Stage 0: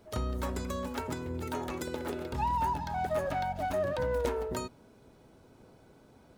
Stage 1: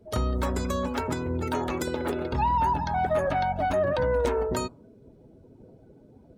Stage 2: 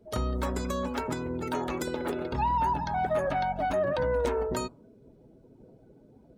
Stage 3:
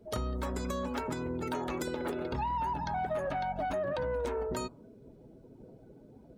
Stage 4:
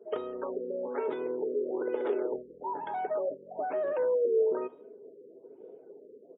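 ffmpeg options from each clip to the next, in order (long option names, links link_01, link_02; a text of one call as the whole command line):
ffmpeg -i in.wav -filter_complex "[0:a]afftdn=noise_reduction=19:noise_floor=-53,asplit=2[link_01][link_02];[link_02]alimiter=level_in=2dB:limit=-24dB:level=0:latency=1,volume=-2dB,volume=0dB[link_03];[link_01][link_03]amix=inputs=2:normalize=0,volume=1.5dB" out.wav
ffmpeg -i in.wav -af "equalizer=frequency=88:width=5.7:gain=-12,volume=-2.5dB" out.wav
ffmpeg -i in.wav -af "asoftclip=type=tanh:threshold=-17.5dB,acompressor=threshold=-34dB:ratio=3,volume=1.5dB" out.wav
ffmpeg -i in.wav -af "highpass=frequency=420:width_type=q:width=4.9,aecho=1:1:76|152|228:0.0841|0.0328|0.0128,afftfilt=real='re*lt(b*sr/1024,550*pow(3900/550,0.5+0.5*sin(2*PI*1.1*pts/sr)))':imag='im*lt(b*sr/1024,550*pow(3900/550,0.5+0.5*sin(2*PI*1.1*pts/sr)))':win_size=1024:overlap=0.75,volume=-3dB" out.wav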